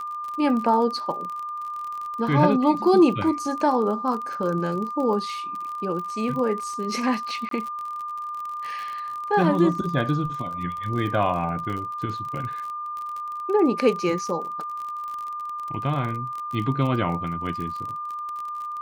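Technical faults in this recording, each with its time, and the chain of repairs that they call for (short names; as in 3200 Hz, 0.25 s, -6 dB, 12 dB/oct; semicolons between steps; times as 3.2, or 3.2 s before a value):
crackle 34/s -30 dBFS
tone 1200 Hz -29 dBFS
7.49–7.51 gap 23 ms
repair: de-click; notch 1200 Hz, Q 30; interpolate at 7.49, 23 ms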